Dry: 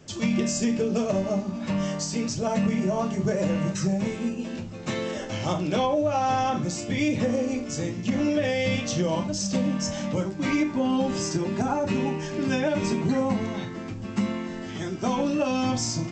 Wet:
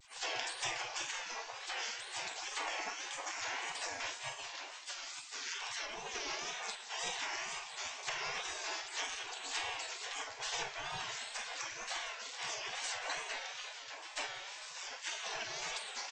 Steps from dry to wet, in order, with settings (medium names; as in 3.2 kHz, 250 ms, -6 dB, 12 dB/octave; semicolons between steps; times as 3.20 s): octave divider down 2 oct, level +2 dB; spectral gate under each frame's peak -30 dB weak; treble shelf 6.4 kHz -7.5 dB; band-stop 1.3 kHz, Q 9.6; reverse; upward compressor, threshold -48 dBFS; reverse; wow and flutter 110 cents; doubling 45 ms -13 dB; delay 184 ms -18 dB; trim +5.5 dB